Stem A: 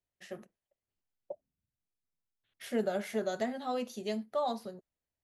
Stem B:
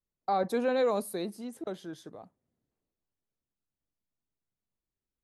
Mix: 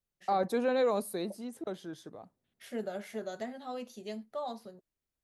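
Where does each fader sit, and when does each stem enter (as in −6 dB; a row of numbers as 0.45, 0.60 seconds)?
−5.5, −1.0 decibels; 0.00, 0.00 seconds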